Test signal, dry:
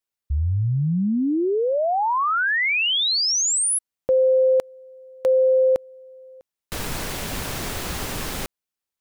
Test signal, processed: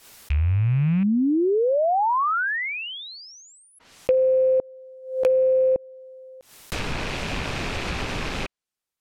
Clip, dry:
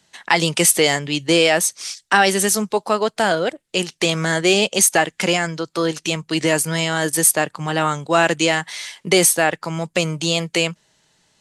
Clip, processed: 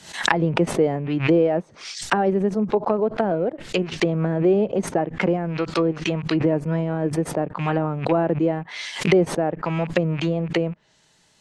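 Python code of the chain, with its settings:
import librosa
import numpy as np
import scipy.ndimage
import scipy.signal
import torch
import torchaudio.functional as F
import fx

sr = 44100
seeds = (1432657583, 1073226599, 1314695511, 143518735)

y = fx.rattle_buzz(x, sr, strikes_db=-37.0, level_db=-22.0)
y = fx.env_lowpass_down(y, sr, base_hz=530.0, full_db=-16.0)
y = fx.pre_swell(y, sr, db_per_s=110.0)
y = F.gain(torch.from_numpy(y), 1.0).numpy()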